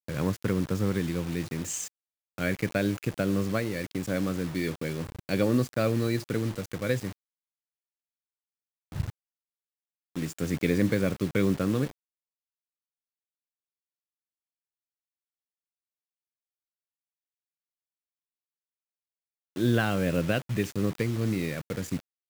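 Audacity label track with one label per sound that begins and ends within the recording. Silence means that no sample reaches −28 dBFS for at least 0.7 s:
8.960000	9.090000	sound
10.170000	11.870000	sound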